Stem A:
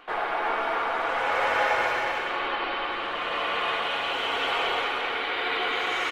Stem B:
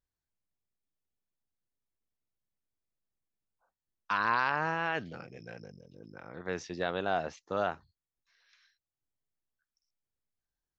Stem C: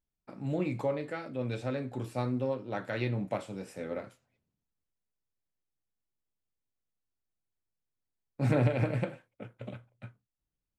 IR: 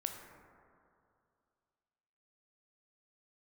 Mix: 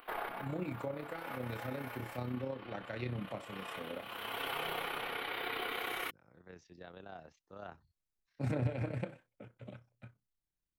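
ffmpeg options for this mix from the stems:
-filter_complex "[0:a]aexciter=amount=14:drive=7.3:freq=10k,volume=-4.5dB[a];[1:a]lowshelf=f=200:g=8.5,volume=-7dB,afade=t=in:st=7.6:d=0.33:silence=0.298538[b];[2:a]volume=-4.5dB,asplit=2[c][d];[d]apad=whole_len=269465[e];[a][e]sidechaincompress=threshold=-51dB:ratio=6:attack=6.6:release=412[f];[f][b][c]amix=inputs=3:normalize=0,acrossover=split=340[g][h];[h]acompressor=threshold=-38dB:ratio=2[i];[g][i]amix=inputs=2:normalize=0,tremolo=f=32:d=0.519"

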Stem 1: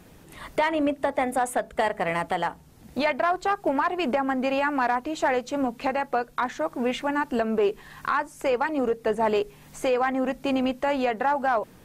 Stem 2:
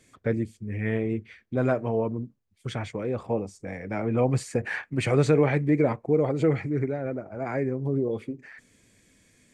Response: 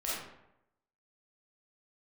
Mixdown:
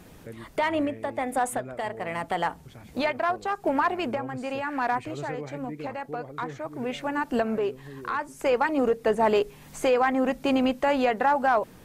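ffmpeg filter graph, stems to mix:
-filter_complex "[0:a]volume=1.5dB[a];[1:a]volume=-16dB,asplit=2[b][c];[c]apad=whole_len=522534[d];[a][d]sidechaincompress=threshold=-44dB:ratio=8:attack=20:release=743[e];[e][b]amix=inputs=2:normalize=0"

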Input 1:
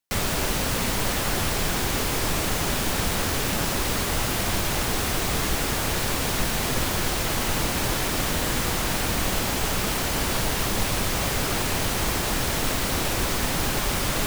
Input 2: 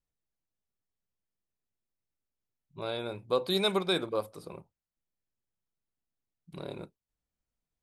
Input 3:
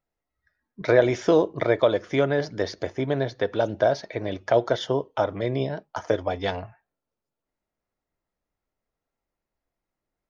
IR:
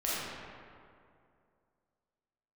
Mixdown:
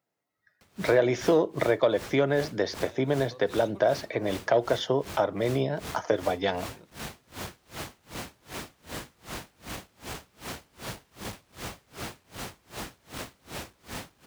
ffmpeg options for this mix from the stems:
-filter_complex "[0:a]highshelf=f=8k:g=-6,asoftclip=type=tanh:threshold=-20dB,aeval=exprs='val(0)*pow(10,-32*(0.5-0.5*cos(2*PI*2.6*n/s))/20)':c=same,adelay=500,volume=-6.5dB[a];[1:a]acompressor=threshold=-33dB:ratio=6,volume=-10dB[b];[2:a]highpass=f=110:w=0.5412,highpass=f=110:w=1.3066,acontrast=45,volume=-2dB[c];[a][b][c]amix=inputs=3:normalize=0,highpass=64,acompressor=threshold=-29dB:ratio=1.5"

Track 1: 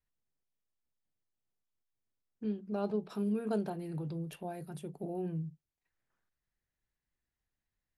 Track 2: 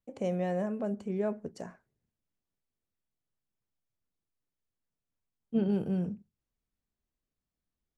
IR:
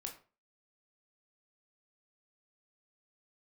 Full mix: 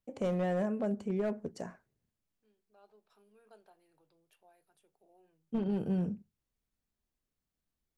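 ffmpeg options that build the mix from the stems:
-filter_complex "[0:a]highpass=650,volume=-20dB,asplit=2[a][b];[b]volume=-9.5dB[c];[1:a]aeval=exprs='clip(val(0),-1,0.0473)':c=same,volume=0.5dB,asplit=2[d][e];[e]apad=whole_len=351783[f];[a][f]sidechaincompress=threshold=-48dB:ratio=8:attack=6.5:release=1370[g];[2:a]atrim=start_sample=2205[h];[c][h]afir=irnorm=-1:irlink=0[i];[g][d][i]amix=inputs=3:normalize=0,alimiter=level_in=0.5dB:limit=-24dB:level=0:latency=1:release=166,volume=-0.5dB"

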